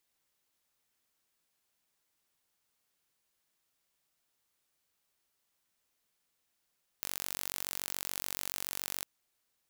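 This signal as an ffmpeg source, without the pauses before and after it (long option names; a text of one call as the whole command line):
ffmpeg -f lavfi -i "aevalsrc='0.335*eq(mod(n,938),0)':duration=2.01:sample_rate=44100" out.wav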